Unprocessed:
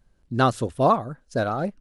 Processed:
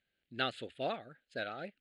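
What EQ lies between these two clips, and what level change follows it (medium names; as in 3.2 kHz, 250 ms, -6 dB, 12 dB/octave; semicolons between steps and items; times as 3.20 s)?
band-pass filter 3.8 kHz, Q 0.69; distance through air 98 m; static phaser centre 2.5 kHz, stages 4; +2.0 dB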